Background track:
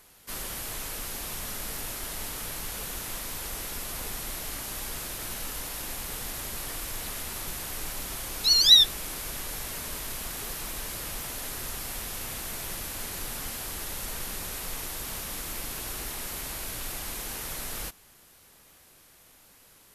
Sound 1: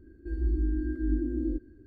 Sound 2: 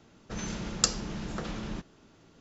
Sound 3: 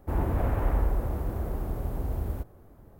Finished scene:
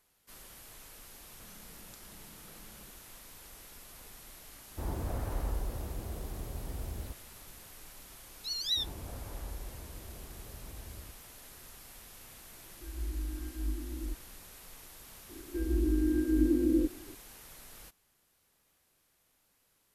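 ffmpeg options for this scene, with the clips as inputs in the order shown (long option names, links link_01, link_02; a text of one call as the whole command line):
ffmpeg -i bed.wav -i cue0.wav -i cue1.wav -i cue2.wav -filter_complex "[3:a]asplit=2[link_01][link_02];[1:a]asplit=2[link_03][link_04];[0:a]volume=-16dB[link_05];[2:a]acompressor=threshold=-38dB:ratio=6:attack=3.2:release=140:knee=1:detection=peak[link_06];[link_02]aresample=32000,aresample=44100[link_07];[link_03]asubboost=boost=9:cutoff=61[link_08];[link_04]equalizer=frequency=560:width=0.57:gain=13[link_09];[link_06]atrim=end=2.4,asetpts=PTS-STARTPTS,volume=-15.5dB,afade=type=in:duration=0.004:curve=hsin,afade=type=out:start_time=2.396:duration=0.004:curve=hsin,adelay=1100[link_10];[link_01]atrim=end=2.99,asetpts=PTS-STARTPTS,volume=-9dB,afade=type=in:duration=0.004:curve=hsin,afade=type=out:start_time=2.986:duration=0.004:curve=hsin,adelay=4700[link_11];[link_07]atrim=end=2.99,asetpts=PTS-STARTPTS,volume=-17dB,afade=type=in:duration=0.004:curve=hsin,afade=type=out:start_time=2.986:duration=0.004:curve=hsin,adelay=8690[link_12];[link_08]atrim=end=1.86,asetpts=PTS-STARTPTS,volume=-12.5dB,afade=type=in:duration=0.004:curve=hsin,afade=type=out:start_time=1.856:duration=0.004:curve=hsin,adelay=12560[link_13];[link_09]atrim=end=1.86,asetpts=PTS-STARTPTS,volume=-4dB,afade=type=in:duration=0.004:curve=hsin,afade=type=out:start_time=1.856:duration=0.004:curve=hsin,adelay=15290[link_14];[link_05][link_10][link_11][link_12][link_13][link_14]amix=inputs=6:normalize=0" out.wav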